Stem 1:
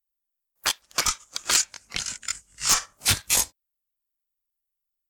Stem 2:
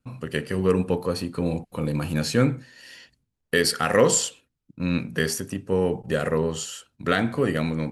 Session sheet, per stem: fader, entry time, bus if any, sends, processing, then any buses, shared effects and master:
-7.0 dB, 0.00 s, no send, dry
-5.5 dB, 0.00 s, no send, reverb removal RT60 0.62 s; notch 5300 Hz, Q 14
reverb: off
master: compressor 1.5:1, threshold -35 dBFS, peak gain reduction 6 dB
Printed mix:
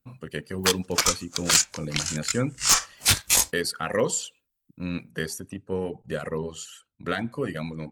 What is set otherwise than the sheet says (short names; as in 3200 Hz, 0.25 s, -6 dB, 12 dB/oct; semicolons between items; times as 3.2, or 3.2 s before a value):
stem 1 -7.0 dB -> +1.5 dB; master: missing compressor 1.5:1, threshold -35 dBFS, peak gain reduction 6 dB